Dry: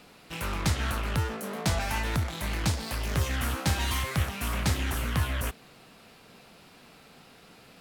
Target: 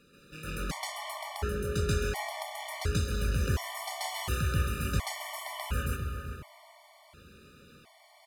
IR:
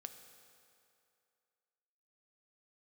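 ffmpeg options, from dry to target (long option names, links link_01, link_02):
-filter_complex "[0:a]asetrate=41630,aresample=44100,asplit=2[link_01][link_02];[link_02]adelay=397,lowpass=frequency=2100:poles=1,volume=-8dB,asplit=2[link_03][link_04];[link_04]adelay=397,lowpass=frequency=2100:poles=1,volume=0.4,asplit=2[link_05][link_06];[link_06]adelay=397,lowpass=frequency=2100:poles=1,volume=0.4,asplit=2[link_07][link_08];[link_08]adelay=397,lowpass=frequency=2100:poles=1,volume=0.4,asplit=2[link_09][link_10];[link_10]adelay=397,lowpass=frequency=2100:poles=1,volume=0.4[link_11];[link_01][link_03][link_05][link_07][link_09][link_11]amix=inputs=6:normalize=0,asplit=2[link_12][link_13];[1:a]atrim=start_sample=2205,asetrate=36162,aresample=44100,adelay=134[link_14];[link_13][link_14]afir=irnorm=-1:irlink=0,volume=8dB[link_15];[link_12][link_15]amix=inputs=2:normalize=0,afftfilt=real='re*gt(sin(2*PI*0.7*pts/sr)*(1-2*mod(floor(b*sr/1024/590),2)),0)':imag='im*gt(sin(2*PI*0.7*pts/sr)*(1-2*mod(floor(b*sr/1024/590),2)),0)':win_size=1024:overlap=0.75,volume=-6.5dB"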